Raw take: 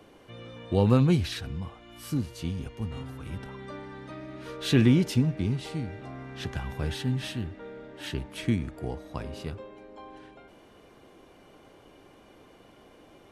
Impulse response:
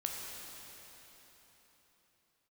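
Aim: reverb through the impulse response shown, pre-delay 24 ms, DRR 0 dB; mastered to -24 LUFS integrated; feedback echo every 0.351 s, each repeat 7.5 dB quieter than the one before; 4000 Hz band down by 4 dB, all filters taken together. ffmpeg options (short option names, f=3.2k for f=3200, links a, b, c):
-filter_complex "[0:a]equalizer=f=4k:t=o:g=-5,aecho=1:1:351|702|1053|1404|1755:0.422|0.177|0.0744|0.0312|0.0131,asplit=2[a][b];[1:a]atrim=start_sample=2205,adelay=24[c];[b][c]afir=irnorm=-1:irlink=0,volume=-2dB[d];[a][d]amix=inputs=2:normalize=0,volume=2dB"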